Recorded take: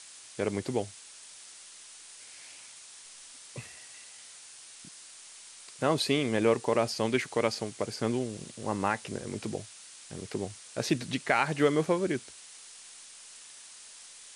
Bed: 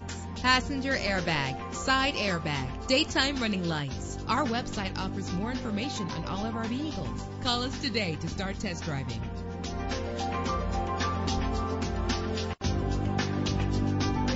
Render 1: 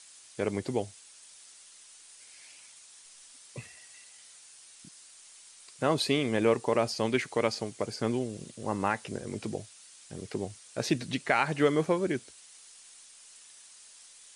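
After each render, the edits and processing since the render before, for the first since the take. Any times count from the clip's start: noise reduction 6 dB, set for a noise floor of -50 dBFS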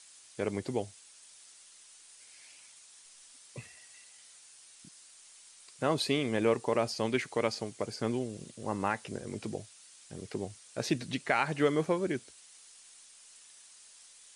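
trim -2.5 dB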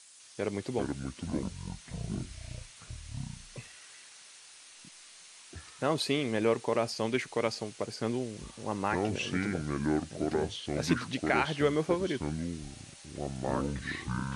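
ever faster or slower copies 198 ms, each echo -7 st, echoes 3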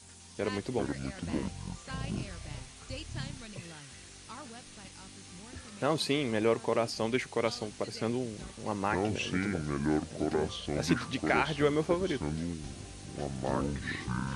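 add bed -19 dB

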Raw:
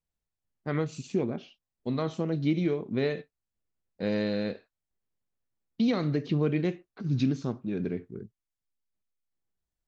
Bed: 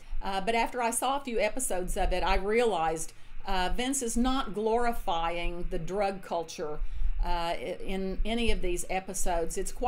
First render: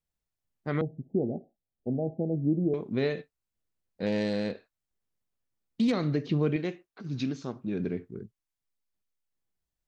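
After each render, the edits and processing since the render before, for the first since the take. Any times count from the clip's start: 0.81–2.74 s: steep low-pass 800 Hz 96 dB/octave; 4.06–5.92 s: self-modulated delay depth 0.084 ms; 6.56–7.56 s: bass shelf 260 Hz -9.5 dB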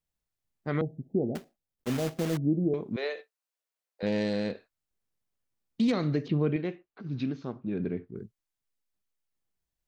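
1.35–2.38 s: block-companded coder 3-bit; 2.96–4.03 s: high-pass 480 Hz 24 dB/octave; 6.28–8.15 s: distance through air 210 m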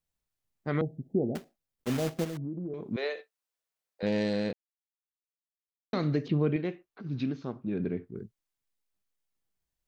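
2.24–2.90 s: compression, threshold -33 dBFS; 4.53–5.93 s: mute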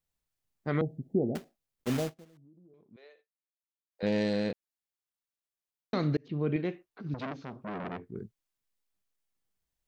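2.00–4.04 s: dip -23 dB, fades 0.15 s; 6.17–6.58 s: fade in; 7.14–8.06 s: transformer saturation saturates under 1.6 kHz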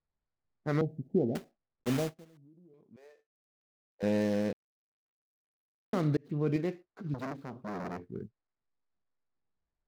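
median filter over 15 samples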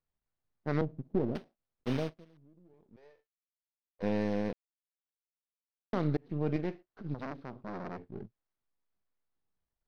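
partial rectifier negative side -7 dB; Savitzky-Golay filter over 15 samples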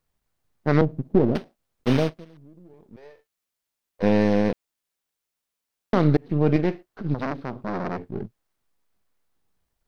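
trim +12 dB

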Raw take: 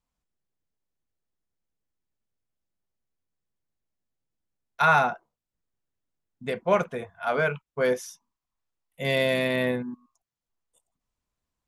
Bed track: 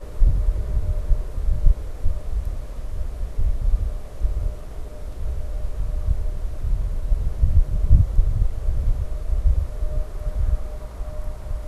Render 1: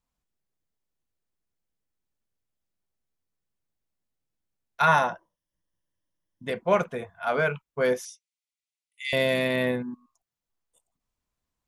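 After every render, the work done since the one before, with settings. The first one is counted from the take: 4.87–6.50 s: rippled EQ curve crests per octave 1.2, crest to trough 10 dB; 8.05–9.13 s: brick-wall FIR band-pass 1.9–11 kHz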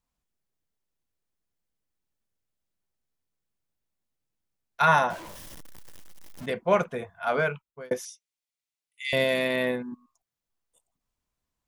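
5.10–6.46 s: jump at every zero crossing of -36 dBFS; 7.37–7.91 s: fade out; 9.24–9.92 s: peaking EQ 110 Hz -8 dB 1.7 oct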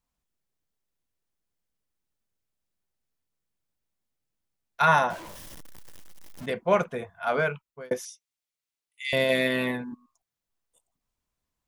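9.28–9.93 s: doubling 15 ms -4 dB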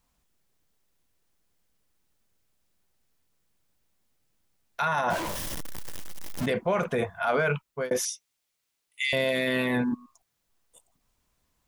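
in parallel at +1.5 dB: compressor with a negative ratio -32 dBFS, ratio -1; on the sum: peak limiter -16.5 dBFS, peak gain reduction 10 dB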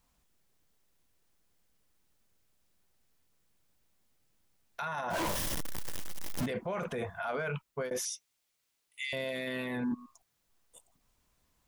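peak limiter -27 dBFS, peak gain reduction 10.5 dB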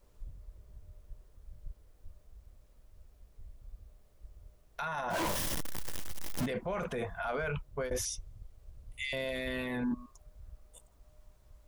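add bed track -29.5 dB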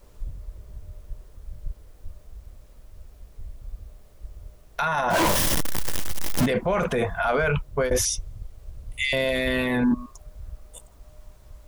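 trim +12 dB

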